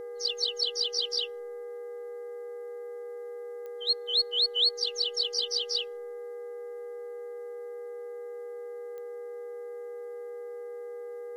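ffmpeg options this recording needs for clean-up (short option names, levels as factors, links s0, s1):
-af "adeclick=t=4,bandreject=f=405.1:t=h:w=4,bandreject=f=810.2:t=h:w=4,bandreject=f=1215.3:t=h:w=4,bandreject=f=1620.4:t=h:w=4,bandreject=f=2025.5:t=h:w=4,bandreject=f=480:w=30,agate=range=0.0891:threshold=0.0251"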